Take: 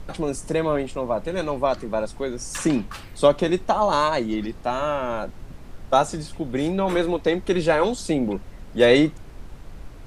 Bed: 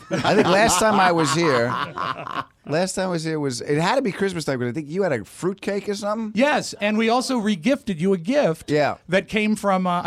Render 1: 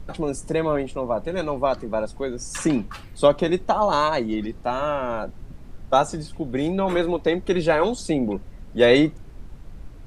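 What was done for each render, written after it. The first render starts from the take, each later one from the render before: denoiser 6 dB, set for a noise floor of -41 dBFS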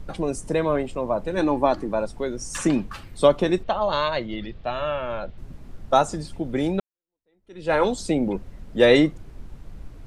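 1.36–1.91 small resonant body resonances 300/830/1700 Hz, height 12 dB -> 9 dB; 3.63–5.38 EQ curve 130 Hz 0 dB, 280 Hz -9 dB, 590 Hz -1 dB, 870 Hz -6 dB, 3500 Hz +4 dB, 9700 Hz -25 dB; 6.8–7.74 fade in exponential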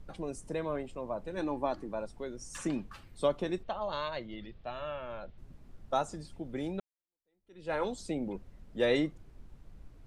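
gain -12.5 dB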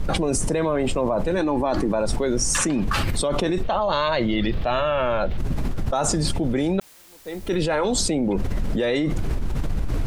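in parallel at +0.5 dB: limiter -27.5 dBFS, peak gain reduction 11 dB; on the sum: fast leveller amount 100%

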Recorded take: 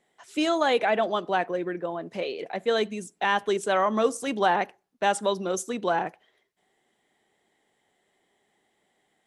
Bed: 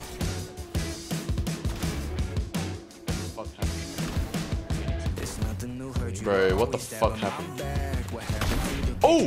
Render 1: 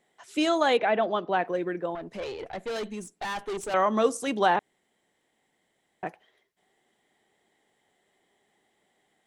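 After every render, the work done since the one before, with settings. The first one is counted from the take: 0.77–1.45 air absorption 180 m; 1.95–3.74 tube stage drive 29 dB, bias 0.45; 4.59–6.03 room tone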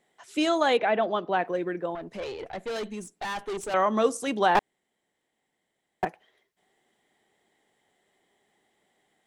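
4.55–6.05 sample leveller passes 3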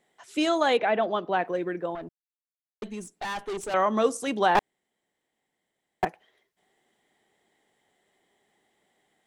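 2.09–2.82 mute; 4.58–6.05 sample leveller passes 1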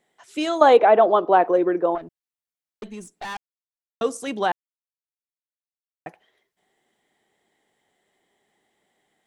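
0.61–1.98 band shelf 610 Hz +10.5 dB 2.5 oct; 3.37–4.01 mute; 4.52–6.06 mute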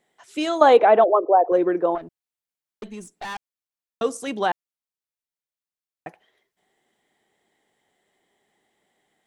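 1.04–1.52 formant sharpening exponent 2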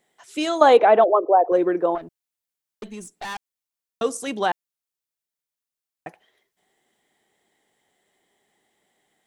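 high shelf 4700 Hz +5 dB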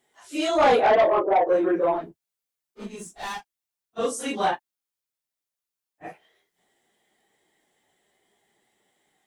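phase scrambler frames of 0.1 s; soft clip -13 dBFS, distortion -11 dB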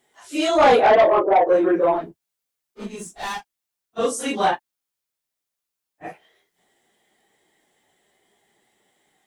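gain +4 dB

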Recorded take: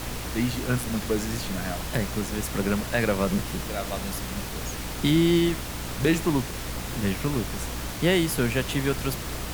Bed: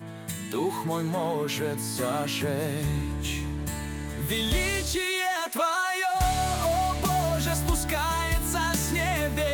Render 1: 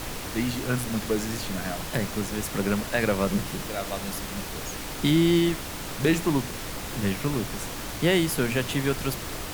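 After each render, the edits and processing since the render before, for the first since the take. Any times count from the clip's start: de-hum 60 Hz, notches 4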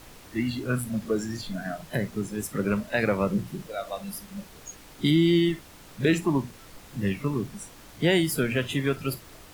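noise print and reduce 14 dB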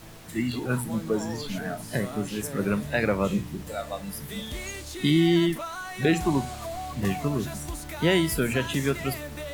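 add bed -10 dB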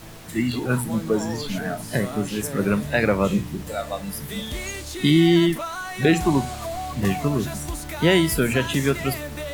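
gain +4.5 dB

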